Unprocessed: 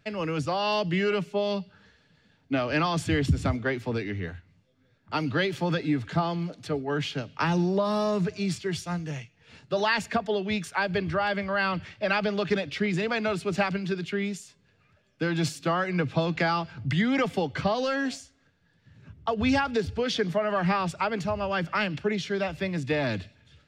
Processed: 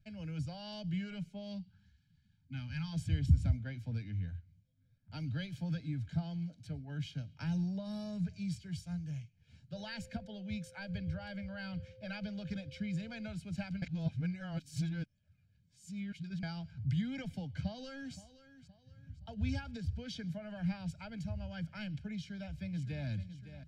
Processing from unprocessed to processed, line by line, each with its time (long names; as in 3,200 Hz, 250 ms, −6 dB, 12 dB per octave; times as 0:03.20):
0:01.59–0:02.93: gain on a spectral selection 260–760 Hz −19 dB
0:09.73–0:13.26: steady tone 520 Hz −34 dBFS
0:13.82–0:16.43: reverse
0:17.50–0:18.15: delay throw 520 ms, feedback 40%, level −15 dB
0:22.16–0:23.07: delay throw 560 ms, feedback 70%, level −12 dB
whole clip: guitar amp tone stack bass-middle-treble 10-0-1; comb filter 1.3 ms, depth 83%; level +4.5 dB